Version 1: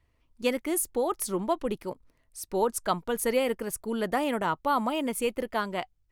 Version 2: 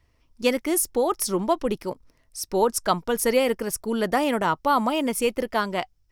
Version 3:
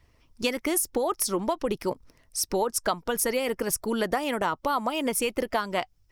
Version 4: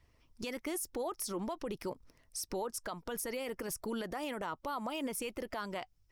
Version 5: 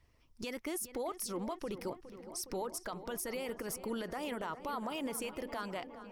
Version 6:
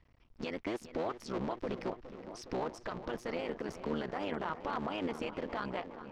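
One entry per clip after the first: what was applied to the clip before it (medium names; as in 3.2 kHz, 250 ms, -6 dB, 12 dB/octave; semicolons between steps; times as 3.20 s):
peaking EQ 5.4 kHz +10 dB 0.3 oct; trim +5 dB
harmonic-percussive split percussive +6 dB; compression, threshold -23 dBFS, peak gain reduction 12.5 dB
peak limiter -23 dBFS, peak gain reduction 11.5 dB; trim -6 dB
filtered feedback delay 413 ms, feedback 78%, low-pass 2.8 kHz, level -13 dB; trim -1 dB
cycle switcher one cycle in 3, muted; distance through air 180 m; trim +4.5 dB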